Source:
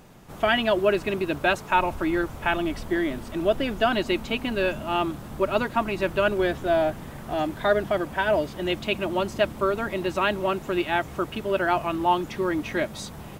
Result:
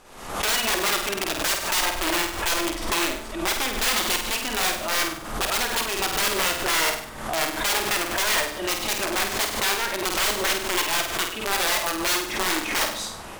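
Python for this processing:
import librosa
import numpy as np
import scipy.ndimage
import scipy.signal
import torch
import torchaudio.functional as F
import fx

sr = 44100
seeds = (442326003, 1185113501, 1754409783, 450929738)

p1 = fx.cvsd(x, sr, bps=64000)
p2 = fx.peak_eq(p1, sr, hz=1200.0, db=3.0, octaves=0.49)
p3 = fx.hum_notches(p2, sr, base_hz=60, count=5)
p4 = fx.rider(p3, sr, range_db=10, speed_s=2.0)
p5 = p3 + (p4 * 10.0 ** (-0.5 / 20.0))
p6 = (np.mod(10.0 ** (13.5 / 20.0) * p5 + 1.0, 2.0) - 1.0) / 10.0 ** (13.5 / 20.0)
p7 = fx.peak_eq(p6, sr, hz=140.0, db=-14.0, octaves=2.2)
p8 = p7 + fx.room_flutter(p7, sr, wall_m=8.5, rt60_s=0.54, dry=0)
p9 = fx.pre_swell(p8, sr, db_per_s=69.0)
y = p9 * 10.0 ** (-4.0 / 20.0)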